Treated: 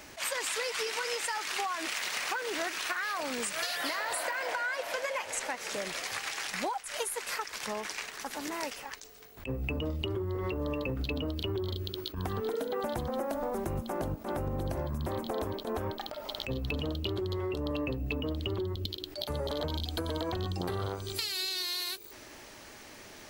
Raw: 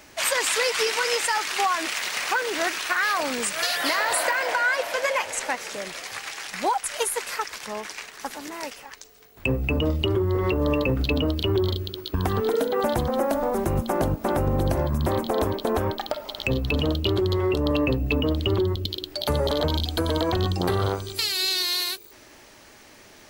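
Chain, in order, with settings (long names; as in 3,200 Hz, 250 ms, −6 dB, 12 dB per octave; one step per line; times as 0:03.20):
downward compressor 6 to 1, threshold −31 dBFS, peak gain reduction 12 dB
level that may rise only so fast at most 230 dB per second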